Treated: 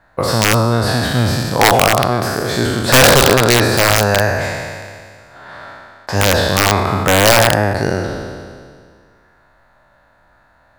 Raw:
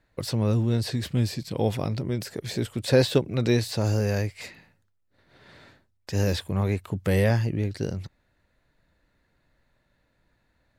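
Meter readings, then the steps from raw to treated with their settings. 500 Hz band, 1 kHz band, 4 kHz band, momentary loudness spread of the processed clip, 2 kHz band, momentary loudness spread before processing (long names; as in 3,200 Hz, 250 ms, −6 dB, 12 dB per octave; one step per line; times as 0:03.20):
+12.5 dB, +23.5 dB, +18.5 dB, 13 LU, +21.0 dB, 10 LU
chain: peak hold with a decay on every bin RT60 2.00 s
flat-topped bell 1,000 Hz +12.5 dB
wrap-around overflow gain 8 dB
level +7 dB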